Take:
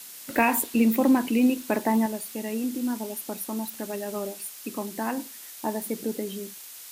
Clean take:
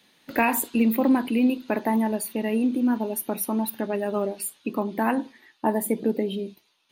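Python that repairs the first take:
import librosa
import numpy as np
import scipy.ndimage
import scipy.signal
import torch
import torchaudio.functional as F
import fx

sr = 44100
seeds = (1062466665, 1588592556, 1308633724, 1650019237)

y = fx.noise_reduce(x, sr, print_start_s=6.4, print_end_s=6.9, reduce_db=17.0)
y = fx.gain(y, sr, db=fx.steps((0.0, 0.0), (2.06, 6.0)))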